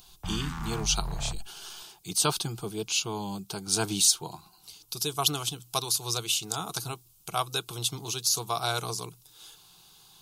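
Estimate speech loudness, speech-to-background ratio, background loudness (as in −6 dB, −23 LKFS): −28.5 LKFS, 9.0 dB, −37.5 LKFS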